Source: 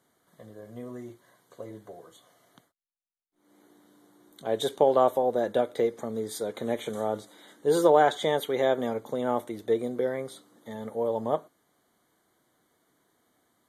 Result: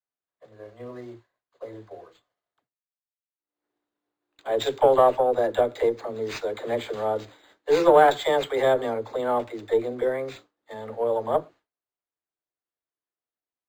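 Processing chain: peaking EQ 190 Hz -13.5 dB 0.94 oct; phase dispersion lows, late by 80 ms, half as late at 340 Hz; Chebyshev shaper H 6 -29 dB, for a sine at -5 dBFS; expander -46 dBFS; decimation joined by straight lines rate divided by 4×; trim +5 dB

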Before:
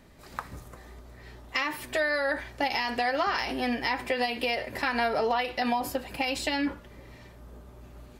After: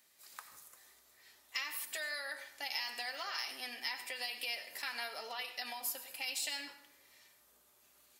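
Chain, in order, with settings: differentiator; plate-style reverb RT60 0.74 s, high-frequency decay 0.65×, pre-delay 75 ms, DRR 11 dB

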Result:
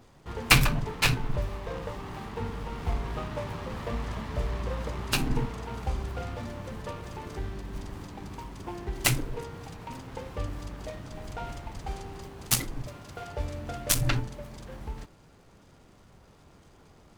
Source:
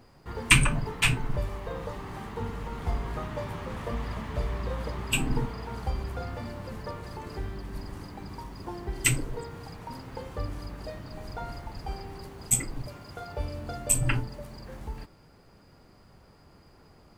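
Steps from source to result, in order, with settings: delay time shaken by noise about 1.4 kHz, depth 0.047 ms

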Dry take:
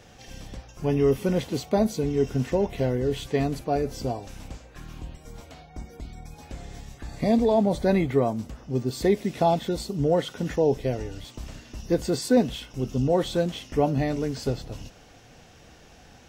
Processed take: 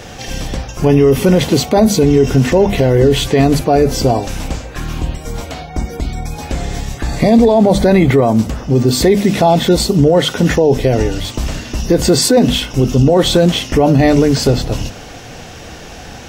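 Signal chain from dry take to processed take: hum notches 50/100/150/200/250 Hz; loudness maximiser +20.5 dB; trim -1 dB

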